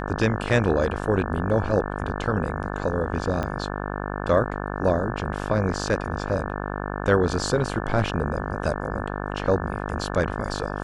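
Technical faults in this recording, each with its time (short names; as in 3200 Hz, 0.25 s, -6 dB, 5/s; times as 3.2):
buzz 50 Hz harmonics 35 -30 dBFS
3.43 pop -15 dBFS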